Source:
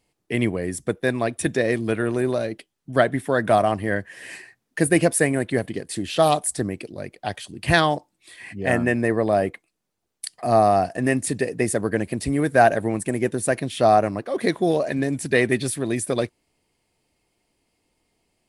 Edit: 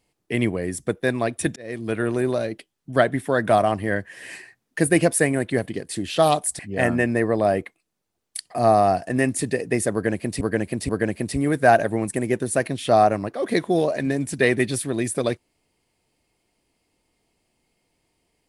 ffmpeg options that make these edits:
-filter_complex "[0:a]asplit=5[s0][s1][s2][s3][s4];[s0]atrim=end=1.56,asetpts=PTS-STARTPTS,afade=t=out:st=1.556:d=0.004:c=hsin[s5];[s1]atrim=start=1.56:end=6.592,asetpts=PTS-STARTPTS,afade=t=in:d=0.46[s6];[s2]atrim=start=8.468:end=12.292[s7];[s3]atrim=start=11.808:end=12.292[s8];[s4]atrim=start=11.808[s9];[s5][s6]concat=n=2:v=0:a=1[s10];[s10][s7]acrossfade=d=0.004:c1=hsin:c2=hsin[s11];[s11][s8]acrossfade=d=0.004:c1=hsin:c2=hsin[s12];[s12][s9]acrossfade=d=0.004:c1=hsin:c2=hsin"

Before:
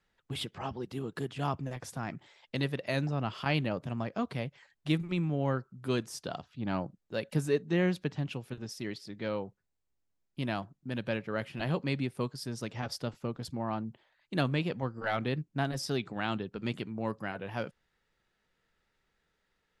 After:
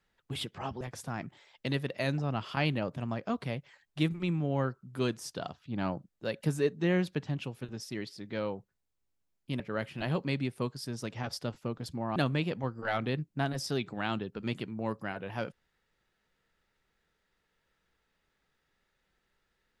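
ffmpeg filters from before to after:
-filter_complex "[0:a]asplit=4[s0][s1][s2][s3];[s0]atrim=end=0.812[s4];[s1]atrim=start=1.698:end=10.492[s5];[s2]atrim=start=11.188:end=13.752[s6];[s3]atrim=start=14.348[s7];[s4][s5]acrossfade=d=0.004:c1=hsin:c2=hsin[s8];[s8][s6]acrossfade=d=0.004:c1=hsin:c2=hsin[s9];[s9][s7]acrossfade=d=0.004:c1=hsin:c2=hsin"

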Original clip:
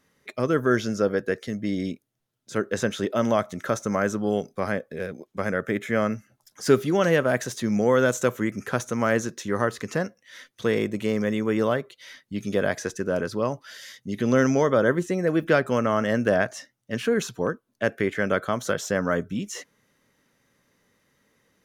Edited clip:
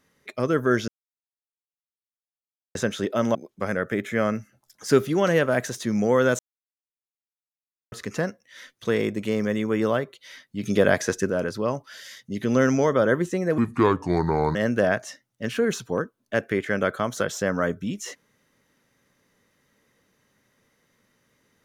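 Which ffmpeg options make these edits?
-filter_complex "[0:a]asplit=10[s0][s1][s2][s3][s4][s5][s6][s7][s8][s9];[s0]atrim=end=0.88,asetpts=PTS-STARTPTS,afade=t=out:st=0.876:d=0.004:c=hsin[s10];[s1]atrim=start=0.88:end=2.75,asetpts=PTS-STARTPTS,volume=0[s11];[s2]atrim=start=2.75:end=3.352,asetpts=PTS-STARTPTS,afade=t=in:d=0.004:c=hsin[s12];[s3]atrim=start=5.118:end=8.16,asetpts=PTS-STARTPTS,afade=t=out:st=3.038:d=0.004:c=hsin[s13];[s4]atrim=start=8.16:end=9.69,asetpts=PTS-STARTPTS,volume=0[s14];[s5]atrim=start=9.69:end=12.402,asetpts=PTS-STARTPTS,afade=t=in:d=0.004:c=hsin[s15];[s6]atrim=start=12.398:end=13.072,asetpts=PTS-STARTPTS,volume=1.78[s16];[s7]atrim=start=13.068:end=15.354[s17];[s8]atrim=start=15.35:end=16.04,asetpts=PTS-STARTPTS,asetrate=31311,aresample=44100[s18];[s9]atrim=start=16.036[s19];[s10][s11][s12]concat=n=3:v=0:a=1[s20];[s13][s14][s15]concat=n=3:v=0:a=1[s21];[s20][s21]acrossfade=d=0.004:c1=hsin:c2=hsin[s22];[s22][s16]acrossfade=d=0.004:c1=hsin:c2=hsin[s23];[s23][s17]acrossfade=d=0.004:c1=hsin:c2=hsin[s24];[s24][s18]acrossfade=d=0.004:c1=hsin:c2=hsin[s25];[s25][s19]acrossfade=d=0.004:c1=hsin:c2=hsin"

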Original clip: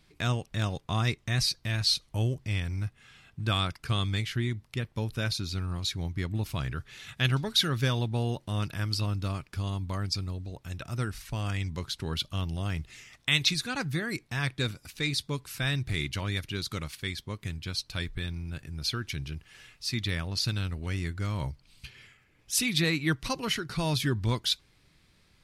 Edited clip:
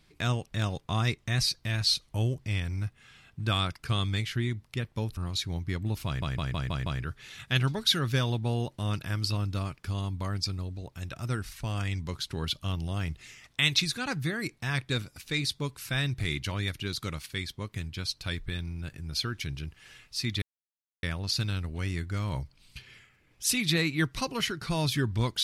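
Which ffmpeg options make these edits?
-filter_complex "[0:a]asplit=8[s0][s1][s2][s3][s4][s5][s6][s7];[s0]atrim=end=5.172[s8];[s1]atrim=start=5.658:end=6.712[s9];[s2]atrim=start=6.548:end=6.712[s10];[s3]atrim=start=6.548:end=6.712[s11];[s4]atrim=start=6.548:end=6.712[s12];[s5]atrim=start=6.548:end=6.712[s13];[s6]atrim=start=6.548:end=20.11,asetpts=PTS-STARTPTS,afade=t=out:st=13.558:d=0.004:c=hsin,apad=pad_dur=0.61[s14];[s7]atrim=start=20.11,asetpts=PTS-STARTPTS,afade=t=in:d=0.004:c=hsin[s15];[s8][s9]acrossfade=d=0.004:c1=hsin:c2=hsin[s16];[s16][s10]acrossfade=d=0.004:c1=hsin:c2=hsin[s17];[s17][s11]acrossfade=d=0.004:c1=hsin:c2=hsin[s18];[s18][s12]acrossfade=d=0.004:c1=hsin:c2=hsin[s19];[s19][s13]acrossfade=d=0.004:c1=hsin:c2=hsin[s20];[s14][s15]concat=n=2:v=0:a=1[s21];[s20][s21]acrossfade=d=0.004:c1=hsin:c2=hsin"

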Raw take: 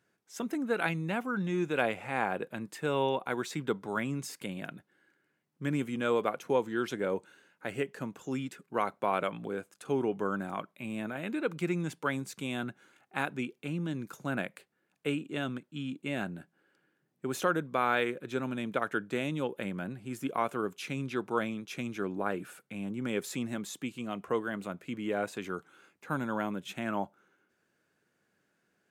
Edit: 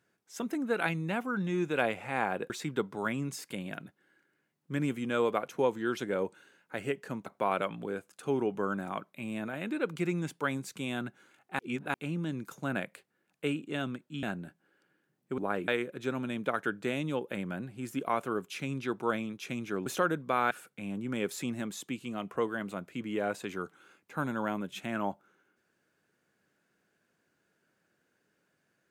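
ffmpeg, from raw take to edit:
-filter_complex "[0:a]asplit=10[s0][s1][s2][s3][s4][s5][s6][s7][s8][s9];[s0]atrim=end=2.502[s10];[s1]atrim=start=3.408:end=8.172[s11];[s2]atrim=start=8.878:end=13.212[s12];[s3]atrim=start=13.208:end=13.562,asetpts=PTS-STARTPTS,areverse[s13];[s4]atrim=start=13.558:end=15.852[s14];[s5]atrim=start=16.158:end=17.312[s15];[s6]atrim=start=22.138:end=22.442[s16];[s7]atrim=start=17.958:end=22.142[s17];[s8]atrim=start=17.308:end=17.962[s18];[s9]atrim=start=22.438[s19];[s10][s11]acrossfade=d=0.004:c1=hsin:c2=hsin[s20];[s20][s12]acrossfade=d=0.004:c1=hsin:c2=hsin[s21];[s21][s13]acrossfade=d=0.004:c1=hsin:c2=hsin[s22];[s22][s14]acrossfade=d=0.004:c1=hsin:c2=hsin[s23];[s23][s15]acrossfade=d=0.004:c1=hsin:c2=hsin[s24];[s24][s16]acrossfade=d=0.004:c1=hsin:c2=hsin[s25];[s25][s17]acrossfade=d=0.004:c1=hsin:c2=hsin[s26];[s26][s18]acrossfade=d=0.004:c1=hsin:c2=hsin[s27];[s27][s19]acrossfade=d=0.004:c1=hsin:c2=hsin"

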